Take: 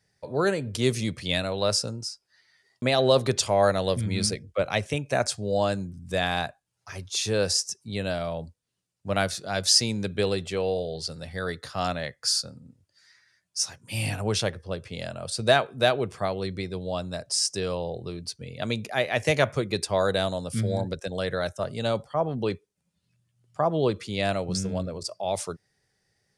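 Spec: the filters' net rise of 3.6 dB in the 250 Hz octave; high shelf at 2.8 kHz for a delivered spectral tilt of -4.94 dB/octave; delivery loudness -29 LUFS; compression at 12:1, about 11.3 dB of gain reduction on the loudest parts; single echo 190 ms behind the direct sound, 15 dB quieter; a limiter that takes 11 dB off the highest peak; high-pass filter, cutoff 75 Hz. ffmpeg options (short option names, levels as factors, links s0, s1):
-af "highpass=75,equalizer=f=250:t=o:g=5,highshelf=f=2800:g=-6.5,acompressor=threshold=0.0501:ratio=12,alimiter=level_in=1.06:limit=0.0631:level=0:latency=1,volume=0.944,aecho=1:1:190:0.178,volume=2"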